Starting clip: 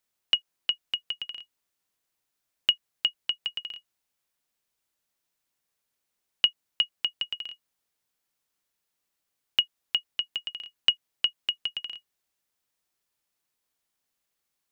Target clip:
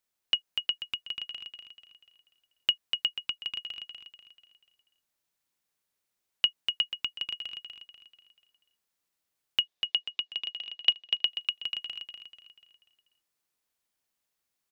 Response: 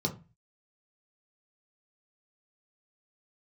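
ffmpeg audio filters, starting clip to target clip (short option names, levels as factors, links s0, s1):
-filter_complex "[0:a]asettb=1/sr,asplit=3[s0][s1][s2];[s0]atrim=end=9.614[s3];[s1]atrim=start=9.61:end=11.25,asetpts=PTS-STARTPTS,afade=t=in:d=0.004:c=qsin,afade=t=out:st=1.636:d=0.004:c=qsin,highpass=240,equalizer=f=390:t=q:w=4:g=5,equalizer=f=690:t=q:w=4:g=4,equalizer=f=1400:t=q:w=4:g=-7,equalizer=f=3600:t=q:w=4:g=7,lowpass=f=6100:w=0.5412,lowpass=f=6100:w=1.3066[s4];[s2]atrim=start=11.246[s5];[s3][s4]acrossfade=d=0.004:c1=hsin:c2=qsin[s6];[s6][s5]acrossfade=d=0.004:c1=qsin:c2=hsin,aecho=1:1:244|488|732|976|1220:0.531|0.228|0.0982|0.0422|0.0181,volume=0.708"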